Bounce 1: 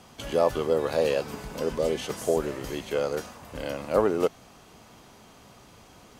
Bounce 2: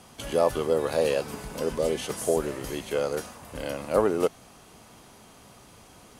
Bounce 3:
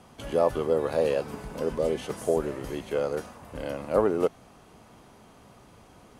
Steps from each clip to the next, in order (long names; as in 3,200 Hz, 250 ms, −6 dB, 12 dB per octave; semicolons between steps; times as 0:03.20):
parametric band 10,000 Hz +8.5 dB 0.52 octaves
high-shelf EQ 2,700 Hz −10 dB